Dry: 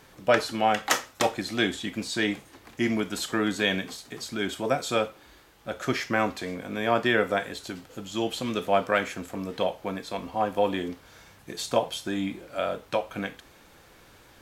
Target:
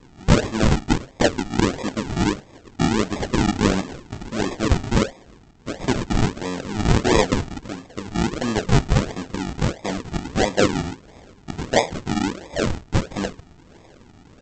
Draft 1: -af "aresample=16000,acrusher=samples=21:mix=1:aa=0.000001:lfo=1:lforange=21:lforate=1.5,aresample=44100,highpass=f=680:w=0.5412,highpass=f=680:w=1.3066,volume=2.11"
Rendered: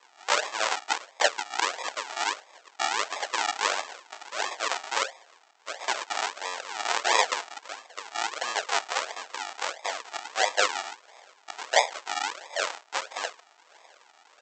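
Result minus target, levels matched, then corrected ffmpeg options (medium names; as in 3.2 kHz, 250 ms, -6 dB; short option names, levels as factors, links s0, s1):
500 Hz band -3.5 dB
-af "aresample=16000,acrusher=samples=21:mix=1:aa=0.000001:lfo=1:lforange=21:lforate=1.5,aresample=44100,volume=2.11"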